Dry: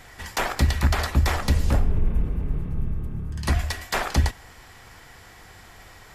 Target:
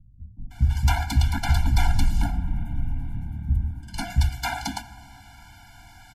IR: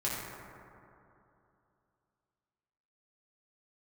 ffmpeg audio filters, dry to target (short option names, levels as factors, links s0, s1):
-filter_complex "[0:a]acrossover=split=190[s0][s1];[s1]adelay=510[s2];[s0][s2]amix=inputs=2:normalize=0,asplit=2[s3][s4];[1:a]atrim=start_sample=2205[s5];[s4][s5]afir=irnorm=-1:irlink=0,volume=0.0944[s6];[s3][s6]amix=inputs=2:normalize=0,afftfilt=real='re*eq(mod(floor(b*sr/1024/340),2),0)':imag='im*eq(mod(floor(b*sr/1024/340),2),0)':win_size=1024:overlap=0.75"